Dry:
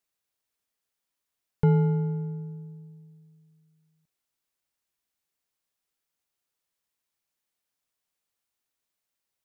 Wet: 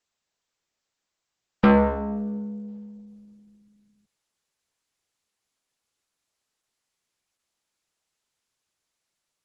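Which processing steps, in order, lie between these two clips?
frequency shifter +50 Hz
harmonic generator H 7 −10 dB, 8 −22 dB, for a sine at −11.5 dBFS
level +3.5 dB
Opus 12 kbit/s 48,000 Hz

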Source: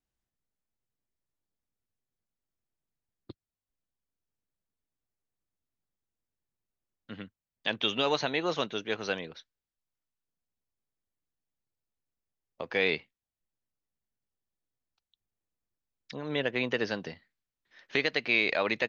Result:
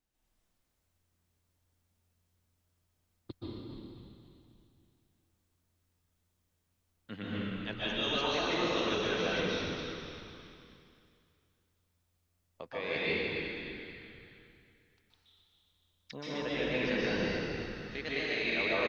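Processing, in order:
reversed playback
downward compressor 6 to 1, threshold −40 dBFS, peak gain reduction 18 dB
reversed playback
echo with shifted repeats 268 ms, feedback 48%, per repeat −87 Hz, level −8.5 dB
dense smooth reverb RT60 2.4 s, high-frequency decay 0.95×, pre-delay 115 ms, DRR −9 dB
level +2 dB

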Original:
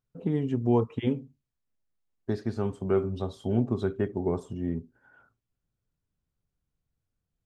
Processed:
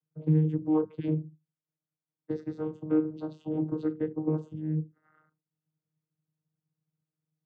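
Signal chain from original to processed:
channel vocoder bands 16, saw 155 Hz

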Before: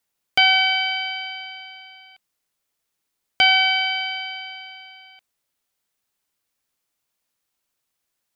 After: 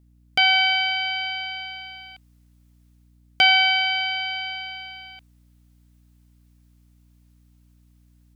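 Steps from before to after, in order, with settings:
automatic gain control gain up to 8.5 dB
mains hum 60 Hz, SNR 30 dB
level −3.5 dB

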